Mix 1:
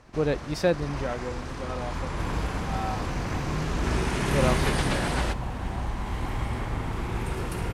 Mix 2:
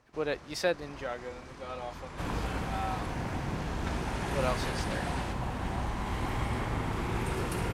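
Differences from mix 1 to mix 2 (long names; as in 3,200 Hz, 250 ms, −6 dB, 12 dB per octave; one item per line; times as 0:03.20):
speech: add high-pass filter 820 Hz 6 dB per octave
first sound −10.5 dB
master: add low-shelf EQ 66 Hz −8 dB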